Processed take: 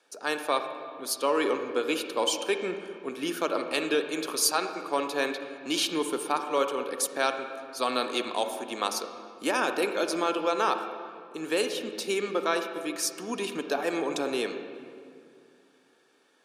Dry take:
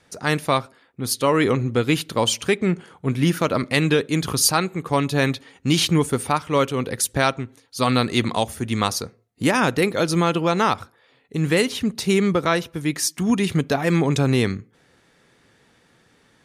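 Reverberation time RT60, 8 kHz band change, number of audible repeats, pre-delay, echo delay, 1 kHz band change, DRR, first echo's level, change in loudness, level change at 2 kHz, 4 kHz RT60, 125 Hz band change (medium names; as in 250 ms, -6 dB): 2.2 s, -6.5 dB, no echo, 38 ms, no echo, -5.5 dB, 6.5 dB, no echo, -8.0 dB, -7.0 dB, 1.6 s, -29.5 dB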